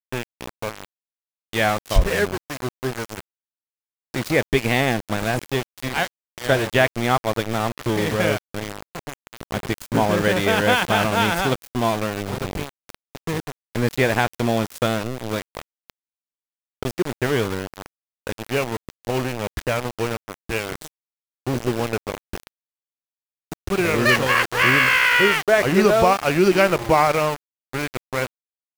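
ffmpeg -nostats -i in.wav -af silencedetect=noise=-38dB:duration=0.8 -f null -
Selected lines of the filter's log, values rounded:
silence_start: 3.20
silence_end: 4.14 | silence_duration: 0.94
silence_start: 15.90
silence_end: 16.83 | silence_duration: 0.93
silence_start: 22.47
silence_end: 23.52 | silence_duration: 1.05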